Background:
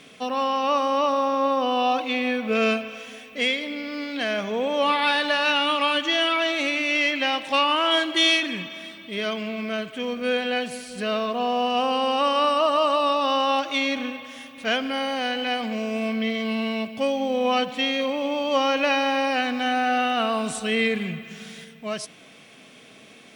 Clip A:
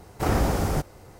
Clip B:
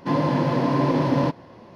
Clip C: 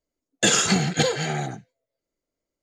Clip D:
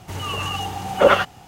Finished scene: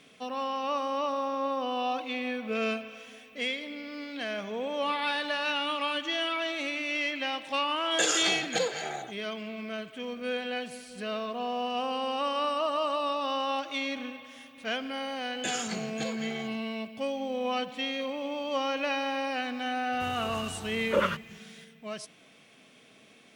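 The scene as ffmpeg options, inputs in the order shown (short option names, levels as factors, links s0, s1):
-filter_complex "[3:a]asplit=2[s0][s1];[0:a]volume=0.376[s2];[s0]lowshelf=f=320:t=q:w=1.5:g=-14[s3];[s1]lowshelf=f=140:g=-9.5[s4];[4:a]asuperstop=centerf=750:order=4:qfactor=2.8[s5];[s3]atrim=end=2.62,asetpts=PTS-STARTPTS,volume=0.422,afade=t=in:d=0.004:c=hsin,afade=t=out:st=2.616:d=0.004:c=hsin,adelay=7560[s6];[s4]atrim=end=2.62,asetpts=PTS-STARTPTS,volume=0.178,afade=t=in:d=0.004:c=hsin,afade=t=out:st=2.616:d=0.004:c=hsin,adelay=15010[s7];[s5]atrim=end=1.47,asetpts=PTS-STARTPTS,volume=0.266,afade=t=in:d=0.004:c=hsin,afade=t=out:st=1.466:d=0.004:c=hsin,adelay=19920[s8];[s2][s6][s7][s8]amix=inputs=4:normalize=0"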